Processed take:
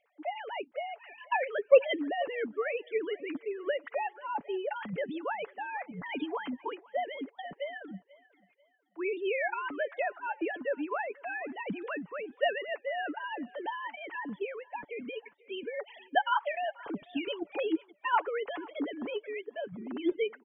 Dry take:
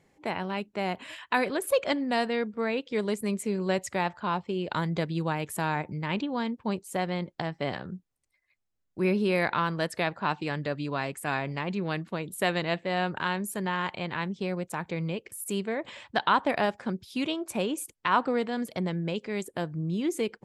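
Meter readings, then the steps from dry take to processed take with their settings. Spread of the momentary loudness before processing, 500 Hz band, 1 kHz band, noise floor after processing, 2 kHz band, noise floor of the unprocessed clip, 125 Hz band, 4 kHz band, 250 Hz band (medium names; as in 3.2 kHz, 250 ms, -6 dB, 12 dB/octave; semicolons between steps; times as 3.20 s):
7 LU, -1.5 dB, -4.0 dB, -68 dBFS, -4.0 dB, -77 dBFS, -20.5 dB, -7.0 dB, -8.0 dB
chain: formants replaced by sine waves; on a send: thinning echo 490 ms, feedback 36%, high-pass 270 Hz, level -21.5 dB; on the sum: harmonic-percussive split harmonic -7 dB; comb 7 ms, depth 33%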